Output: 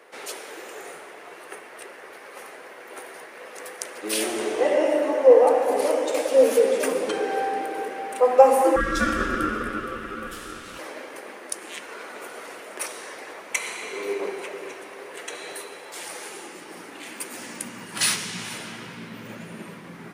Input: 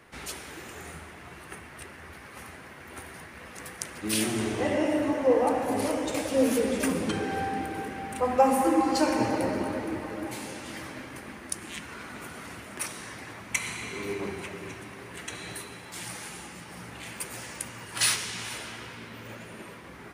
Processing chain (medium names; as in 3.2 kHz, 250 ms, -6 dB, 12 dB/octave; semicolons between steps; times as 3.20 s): high-pass sweep 470 Hz -> 170 Hz, 16.00–18.27 s; 8.76–10.79 s: ring modulator 840 Hz; 16.81–17.41 s: bass shelf 210 Hz -8.5 dB; trim +2 dB